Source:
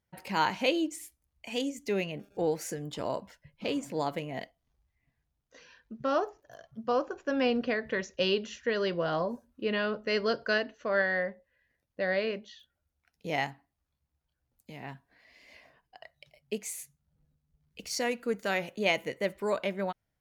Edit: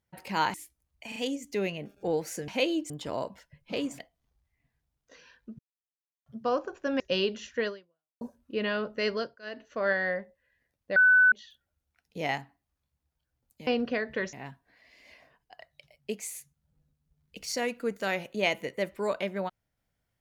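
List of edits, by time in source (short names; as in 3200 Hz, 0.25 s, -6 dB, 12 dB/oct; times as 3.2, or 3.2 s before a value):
0.54–0.96 move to 2.82
1.5 stutter 0.04 s, 3 plays
3.91–4.42 cut
6.02–6.69 mute
7.43–8.09 move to 14.76
8.76–9.3 fade out exponential
10.19–10.79 dip -23 dB, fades 0.28 s
12.05–12.41 bleep 1500 Hz -16 dBFS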